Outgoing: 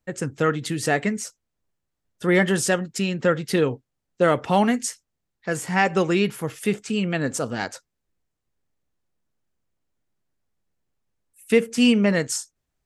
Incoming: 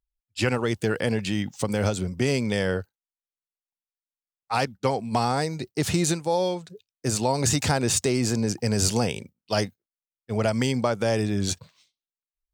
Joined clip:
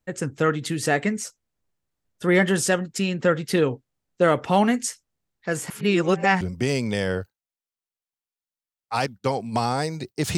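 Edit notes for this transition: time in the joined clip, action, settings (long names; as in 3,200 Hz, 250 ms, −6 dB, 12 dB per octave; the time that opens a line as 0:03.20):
outgoing
0:05.70–0:06.41: reverse
0:06.41: continue with incoming from 0:02.00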